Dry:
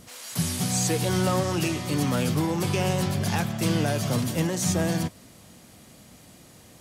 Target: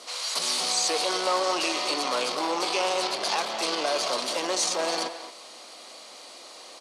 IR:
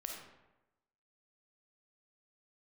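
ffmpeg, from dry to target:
-filter_complex "[0:a]alimiter=limit=-18.5dB:level=0:latency=1:release=32,asoftclip=type=tanh:threshold=-25.5dB,highpass=f=420:w=0.5412,highpass=f=420:w=1.3066,equalizer=f=440:t=q:w=4:g=-3,equalizer=f=1.1k:t=q:w=4:g=4,equalizer=f=1.7k:t=q:w=4:g=-6,equalizer=f=4.3k:t=q:w=4:g=8,equalizer=f=7.4k:t=q:w=4:g=-5,lowpass=f=8.8k:w=0.5412,lowpass=f=8.8k:w=1.3066,asplit=2[a][b];[b]adelay=220,highpass=300,lowpass=3.4k,asoftclip=type=hard:threshold=-29dB,volume=-10dB[c];[a][c]amix=inputs=2:normalize=0,volume=8.5dB"

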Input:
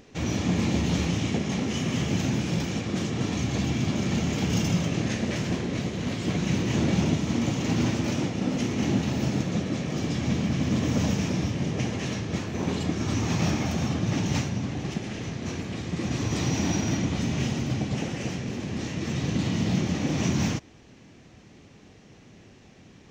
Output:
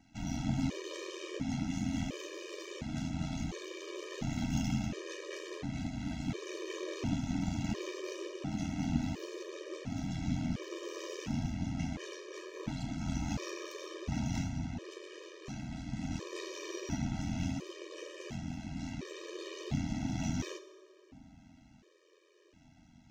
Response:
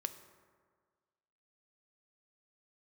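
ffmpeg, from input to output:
-filter_complex "[0:a]aeval=exprs='val(0)*sin(2*PI*43*n/s)':c=same,aeval=exprs='0.299*(cos(1*acos(clip(val(0)/0.299,-1,1)))-cos(1*PI/2))+0.0266*(cos(4*acos(clip(val(0)/0.299,-1,1)))-cos(4*PI/2))':c=same[a];[1:a]atrim=start_sample=2205,asetrate=30870,aresample=44100[b];[a][b]afir=irnorm=-1:irlink=0,afftfilt=real='re*gt(sin(2*PI*0.71*pts/sr)*(1-2*mod(floor(b*sr/1024/320),2)),0)':imag='im*gt(sin(2*PI*0.71*pts/sr)*(1-2*mod(floor(b*sr/1024/320),2)),0)':win_size=1024:overlap=0.75,volume=-6dB"

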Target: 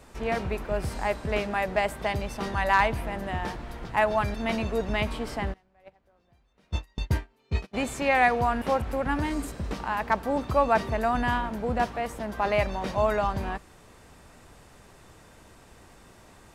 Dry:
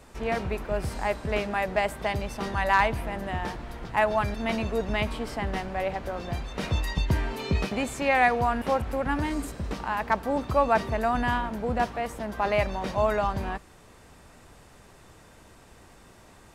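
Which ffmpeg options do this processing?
-filter_complex "[0:a]asplit=3[a][b][c];[a]afade=t=out:st=5.52:d=0.02[d];[b]agate=range=-32dB:threshold=-23dB:ratio=16:detection=peak,afade=t=in:st=5.52:d=0.02,afade=t=out:st=7.73:d=0.02[e];[c]afade=t=in:st=7.73:d=0.02[f];[d][e][f]amix=inputs=3:normalize=0"

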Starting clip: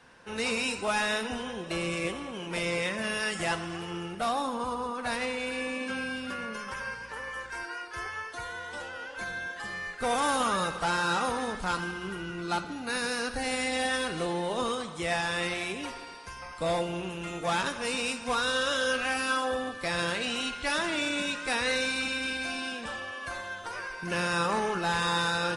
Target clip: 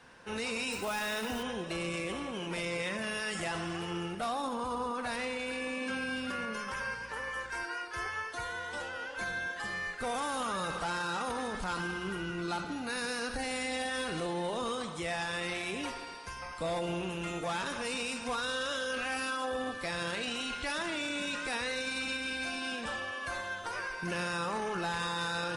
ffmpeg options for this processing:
-filter_complex "[0:a]alimiter=level_in=3dB:limit=-24dB:level=0:latency=1:release=16,volume=-3dB,asettb=1/sr,asplit=3[a][b][c];[a]atrim=end=0.724[d];[b]atrim=start=0.72:end=1.43,asetpts=PTS-STARTPTS,afade=t=in:d=0.004:c=qsin,afade=t=out:st=0.706:d=0.004:c=qsin,acrusher=bits=3:mode=log:mix=0:aa=0.000001[e];[c]atrim=start=1.426[f];[d][e]acrossfade=d=0.004:c1=hsin:c2=qsin[g];[g][f]acrossfade=d=0.004:c1=qsin:c2=hsin"

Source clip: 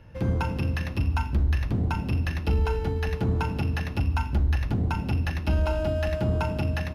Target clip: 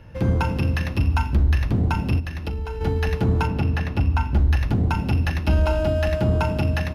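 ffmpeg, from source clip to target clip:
-filter_complex "[0:a]asettb=1/sr,asplit=3[a][b][c];[a]atrim=end=2.194[d];[b]atrim=start=2.19:end=2.81,asetpts=PTS-STARTPTS,afade=t=in:d=0.004:c=qsin,afade=t=out:st=0.616:d=0.004:c=qsin,acompressor=threshold=-31dB:ratio=6[e];[c]atrim=start=2.806[f];[d][e]acrossfade=d=0.004:c1=hsin:c2=qsin[g];[g][f]acrossfade=d=0.004:c1=qsin:c2=hsin,asettb=1/sr,asplit=3[h][i][j];[h]atrim=end=3.474[k];[i]atrim=start=3.47:end=4.36,asetpts=PTS-STARTPTS,afade=t=in:d=0.004:c=qsin,afade=t=out:st=0.886:d=0.004:c=qsin,highshelf=f=4k:g=-8.5[l];[j]atrim=start=4.356[m];[k][l]acrossfade=d=0.004:c1=hsin:c2=qsin[n];[n][m]acrossfade=d=0.004:c1=qsin:c2=hsin,volume=5dB"

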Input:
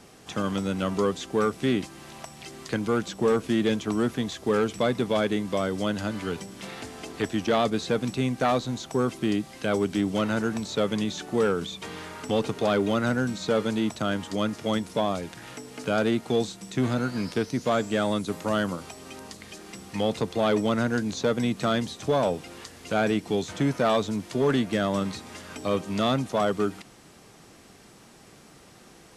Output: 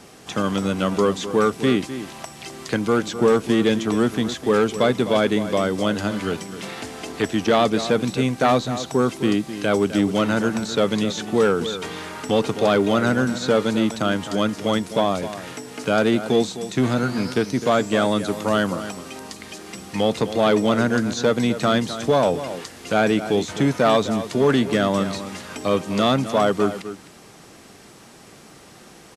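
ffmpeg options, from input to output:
-filter_complex "[0:a]lowshelf=f=95:g=-5.5,asplit=2[a][b];[b]adelay=256.6,volume=-12dB,highshelf=f=4k:g=-5.77[c];[a][c]amix=inputs=2:normalize=0,volume=6dB"

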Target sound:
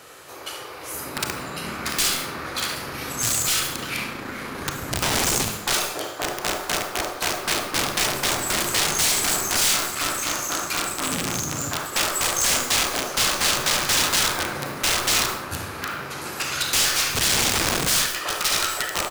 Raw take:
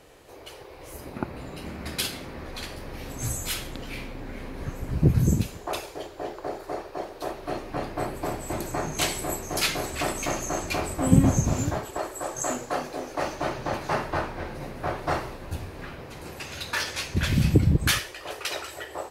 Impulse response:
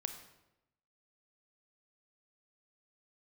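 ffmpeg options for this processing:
-filter_complex "[0:a]asettb=1/sr,asplit=3[a][b][c];[a]atrim=end=9.764[d];[b]atrim=start=9.76:end=11.92,asetpts=PTS-STARTPTS,afade=t=in:d=0.004:c=qsin,afade=t=out:st=2.156:d=0.004:c=qsin,aeval=exprs='max(val(0),0)':c=same[e];[c]atrim=start=11.916[f];[d][e]acrossfade=d=0.004:c1=hsin:c2=qsin[g];[g][f]acrossfade=d=0.004:c1=qsin:c2=hsin,equalizer=f=1.3k:w=2:g=10.5,aecho=1:1:42|71:0.168|0.376,aeval=exprs='(tanh(7.94*val(0)+0.55)-tanh(0.55))/7.94':c=same,highpass=100,aeval=exprs='(mod(18.8*val(0)+1,2)-1)/18.8':c=same,highshelf=f=2.7k:g=11[h];[1:a]atrim=start_sample=2205,afade=t=out:st=0.26:d=0.01,atrim=end_sample=11907[i];[h][i]afir=irnorm=-1:irlink=0,acrossover=split=9000[j][k];[k]acompressor=threshold=-31dB:ratio=4:attack=1:release=60[l];[j][l]amix=inputs=2:normalize=0,volume=6.5dB"

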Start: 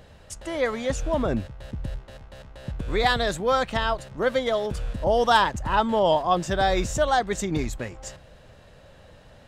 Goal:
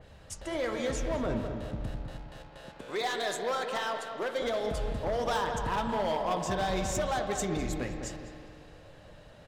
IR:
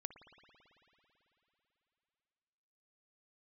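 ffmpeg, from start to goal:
-filter_complex "[0:a]asettb=1/sr,asplit=3[a][b][c];[a]atrim=end=2.074[d];[b]atrim=start=2.07:end=4.42,asetpts=PTS-STARTPTS,afade=t=in:d=0.004:c=qsin,afade=t=out:st=2.346:d=0.004:c=qsin,highpass=360[e];[c]atrim=start=4.416[f];[d][e]acrossfade=d=0.004:c1=hsin:c2=qsin[g];[g][f]acrossfade=d=0.004:c1=qsin:c2=hsin,acompressor=threshold=-25dB:ratio=3,flanger=delay=2:depth=7.9:regen=-66:speed=1.3:shape=triangular,volume=27.5dB,asoftclip=hard,volume=-27.5dB,asplit=2[h][i];[i]adelay=205,lowpass=f=1.5k:p=1,volume=-6dB,asplit=2[j][k];[k]adelay=205,lowpass=f=1.5k:p=1,volume=0.43,asplit=2[l][m];[m]adelay=205,lowpass=f=1.5k:p=1,volume=0.43,asplit=2[n][o];[o]adelay=205,lowpass=f=1.5k:p=1,volume=0.43,asplit=2[p][q];[q]adelay=205,lowpass=f=1.5k:p=1,volume=0.43[r];[h][j][l][n][p][r]amix=inputs=6:normalize=0[s];[1:a]atrim=start_sample=2205,asetrate=57330,aresample=44100[t];[s][t]afir=irnorm=-1:irlink=0,adynamicequalizer=threshold=0.00398:dfrequency=3600:dqfactor=0.7:tfrequency=3600:tqfactor=0.7:attack=5:release=100:ratio=0.375:range=1.5:mode=boostabove:tftype=highshelf,volume=8dB"

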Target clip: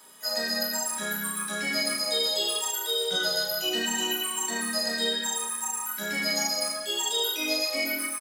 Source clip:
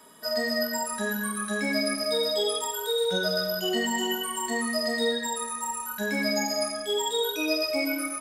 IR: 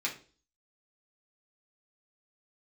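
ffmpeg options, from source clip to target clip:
-filter_complex "[0:a]tiltshelf=f=1.3k:g=-5.5,asplit=4[a][b][c][d];[b]asetrate=37084,aresample=44100,atempo=1.18921,volume=-11dB[e];[c]asetrate=58866,aresample=44100,atempo=0.749154,volume=-15dB[f];[d]asetrate=88200,aresample=44100,atempo=0.5,volume=-18dB[g];[a][e][f][g]amix=inputs=4:normalize=0,asplit=2[h][i];[i]adelay=35,volume=-5.5dB[j];[h][j]amix=inputs=2:normalize=0,volume=-3dB"

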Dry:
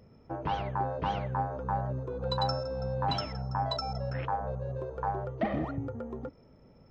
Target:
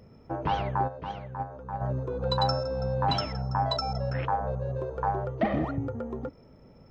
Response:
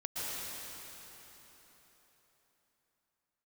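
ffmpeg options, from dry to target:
-filter_complex "[0:a]asplit=3[a][b][c];[a]afade=t=out:st=0.87:d=0.02[d];[b]agate=range=-10dB:threshold=-27dB:ratio=16:detection=peak,afade=t=in:st=0.87:d=0.02,afade=t=out:st=1.8:d=0.02[e];[c]afade=t=in:st=1.8:d=0.02[f];[d][e][f]amix=inputs=3:normalize=0,volume=4dB"

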